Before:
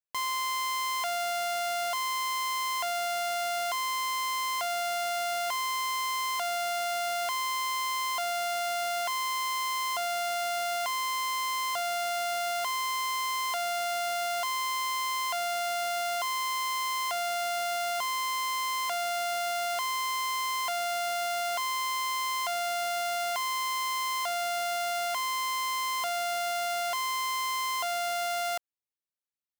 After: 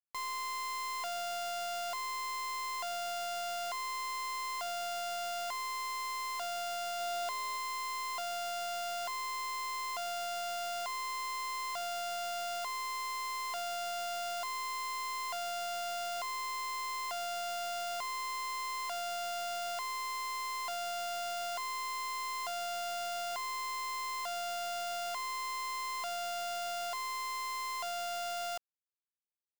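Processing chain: tracing distortion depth 0.45 ms; word length cut 6-bit, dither none; 6.99–7.56 s: small resonant body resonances 350/590/3700 Hz, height 9 dB -> 12 dB; trim -6.5 dB

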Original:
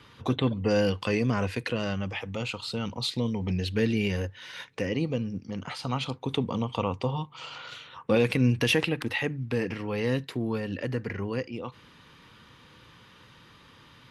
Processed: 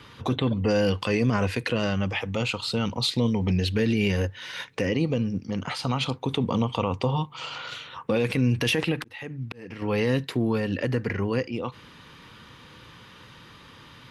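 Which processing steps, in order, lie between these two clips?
peak limiter -20 dBFS, peak gain reduction 8.5 dB; 8.95–9.82 s: slow attack 675 ms; trim +5.5 dB

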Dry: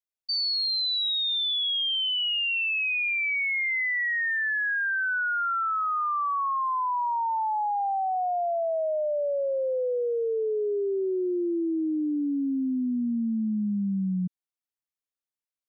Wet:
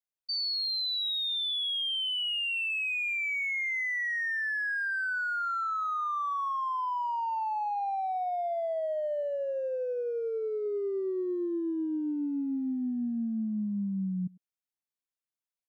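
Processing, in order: 9.23–10.66 s: elliptic low-pass 4.2 kHz; speakerphone echo 100 ms, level -14 dB; trim -4.5 dB

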